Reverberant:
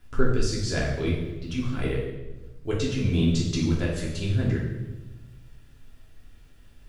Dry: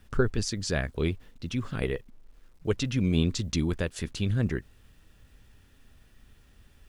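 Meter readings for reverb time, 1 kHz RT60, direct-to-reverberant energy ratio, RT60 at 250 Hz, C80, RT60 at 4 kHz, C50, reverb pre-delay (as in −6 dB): 1.1 s, 0.95 s, −5.0 dB, 1.5 s, 5.5 dB, 0.90 s, 3.0 dB, 3 ms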